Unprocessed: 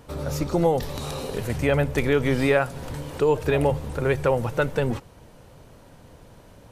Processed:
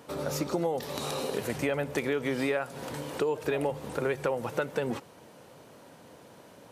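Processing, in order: HPF 210 Hz 12 dB/oct; compressor 5:1, threshold -26 dBFS, peak gain reduction 10.5 dB

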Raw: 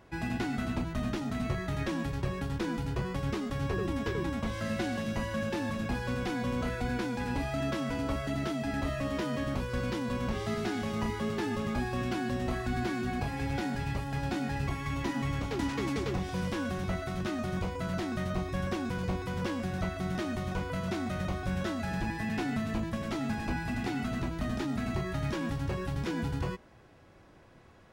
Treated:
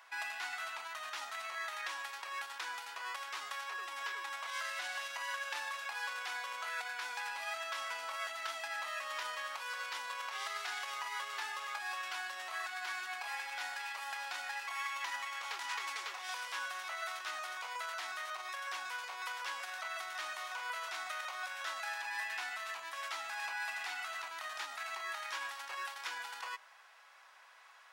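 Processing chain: limiter -29 dBFS, peak gain reduction 10 dB; HPF 940 Hz 24 dB/oct; gain +5 dB

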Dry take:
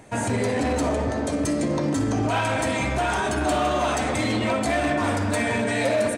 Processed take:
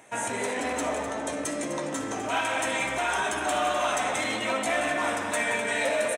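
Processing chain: HPF 930 Hz 6 dB/oct; bell 4600 Hz -13 dB 0.23 oct; doubler 15 ms -12 dB; on a send: loudspeakers at several distances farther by 61 m -11 dB, 87 m -11 dB

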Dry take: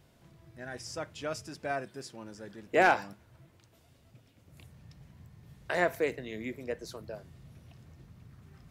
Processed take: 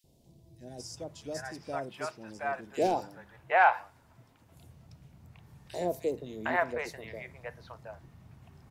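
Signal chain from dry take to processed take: bell 860 Hz +7.5 dB 0.86 oct; notches 50/100/150/200 Hz; three bands offset in time highs, lows, mids 40/760 ms, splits 610/3400 Hz

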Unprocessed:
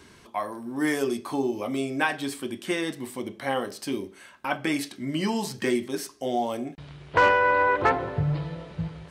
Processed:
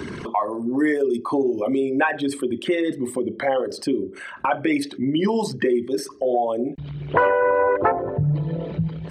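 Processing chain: formant sharpening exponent 2; three-band squash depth 70%; gain +5.5 dB

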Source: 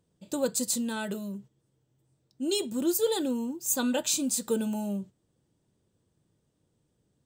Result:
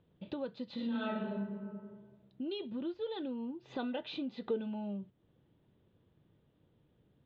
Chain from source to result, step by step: steep low-pass 3700 Hz 48 dB/oct; 0.74–1.34 reverb throw, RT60 1.1 s, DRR -11.5 dB; compressor 3:1, threshold -45 dBFS, peak gain reduction 20.5 dB; 3.64–4.6 small resonant body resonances 420/710/2000 Hz, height 10 dB; gain +3.5 dB

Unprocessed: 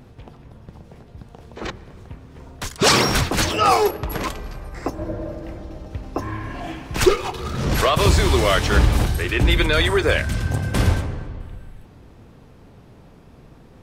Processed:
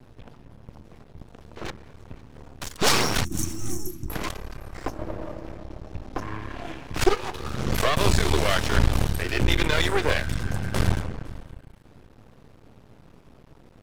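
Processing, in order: half-wave rectifier; 3.25–4.09 spectral gain 380–5400 Hz -28 dB; 5.32–7.28 high shelf 10000 Hz -5 dB; thinning echo 0.508 s, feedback 17%, level -23.5 dB; gain -1 dB

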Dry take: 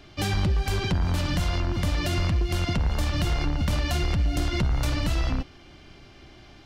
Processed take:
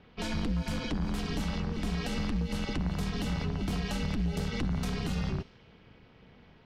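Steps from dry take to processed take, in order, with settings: low-pass opened by the level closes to 2600 Hz, open at -20 dBFS; ring modulator 120 Hz; gain -4.5 dB

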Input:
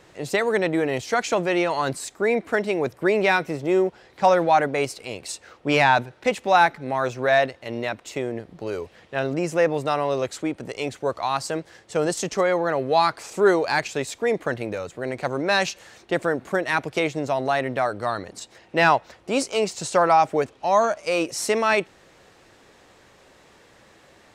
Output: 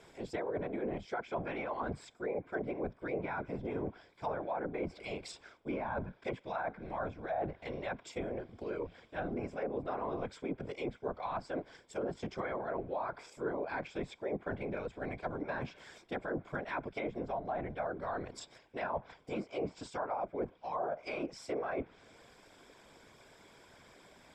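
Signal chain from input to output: ripple EQ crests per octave 1.7, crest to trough 10 dB; whisperiser; reverse; compressor 4:1, threshold -28 dBFS, peak gain reduction 16 dB; reverse; treble ducked by the level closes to 1100 Hz, closed at -24.5 dBFS; gain -7 dB

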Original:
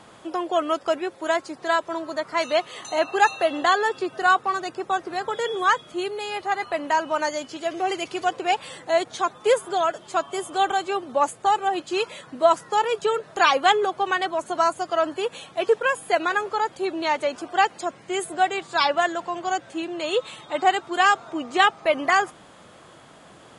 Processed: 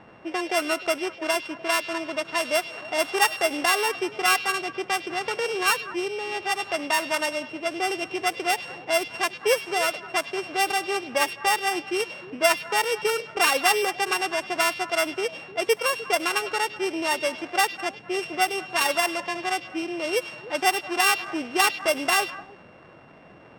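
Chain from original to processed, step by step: sample sorter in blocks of 16 samples; in parallel at -2 dB: compressor, threshold -26 dBFS, peak gain reduction 13.5 dB; on the sum: low-pass opened by the level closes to 1900 Hz, open at -14.5 dBFS; delay with a stepping band-pass 0.101 s, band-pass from 3300 Hz, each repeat -1.4 oct, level -10 dB; gain -4.5 dB

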